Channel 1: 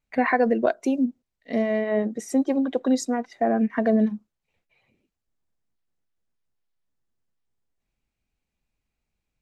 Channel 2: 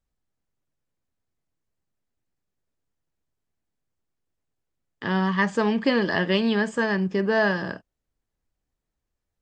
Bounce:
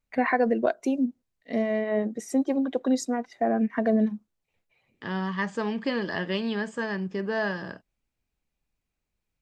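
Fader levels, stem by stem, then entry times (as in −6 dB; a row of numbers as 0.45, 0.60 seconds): −2.5, −6.5 decibels; 0.00, 0.00 seconds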